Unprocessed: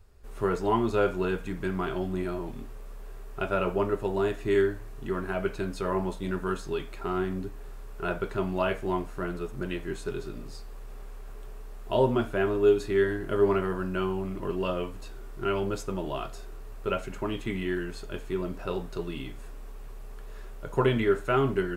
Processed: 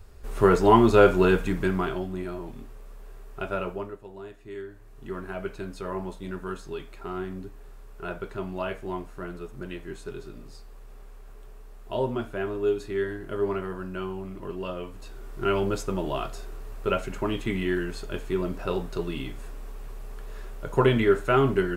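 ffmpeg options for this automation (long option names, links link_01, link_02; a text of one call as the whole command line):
ffmpeg -i in.wav -af "volume=26.5dB,afade=type=out:start_time=1.38:duration=0.69:silence=0.298538,afade=type=out:start_time=3.54:duration=0.45:silence=0.237137,afade=type=in:start_time=4.67:duration=0.45:silence=0.298538,afade=type=in:start_time=14.82:duration=0.67:silence=0.421697" out.wav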